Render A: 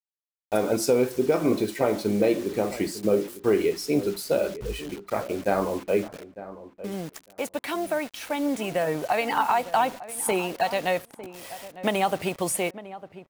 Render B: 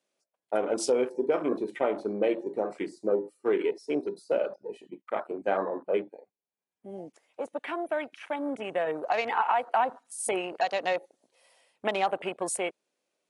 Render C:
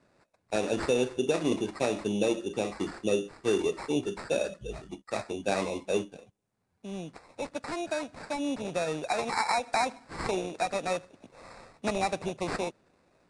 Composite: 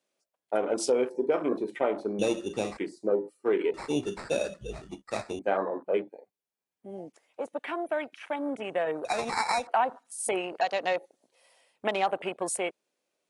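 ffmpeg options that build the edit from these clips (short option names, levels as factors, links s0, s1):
-filter_complex "[2:a]asplit=3[s0][s1][s2];[1:a]asplit=4[s3][s4][s5][s6];[s3]atrim=end=2.192[s7];[s0]atrim=start=2.188:end=2.772[s8];[s4]atrim=start=2.768:end=3.742[s9];[s1]atrim=start=3.738:end=5.392[s10];[s5]atrim=start=5.388:end=9.052[s11];[s2]atrim=start=9.048:end=9.672[s12];[s6]atrim=start=9.668[s13];[s7][s8]acrossfade=d=0.004:c1=hsin:c2=hsin[s14];[s14][s9]acrossfade=d=0.004:c1=hsin:c2=hsin[s15];[s15][s10]acrossfade=d=0.004:c1=hsin:c2=hsin[s16];[s16][s11]acrossfade=d=0.004:c1=hsin:c2=hsin[s17];[s17][s12]acrossfade=d=0.004:c1=hsin:c2=hsin[s18];[s18][s13]acrossfade=d=0.004:c1=hsin:c2=hsin"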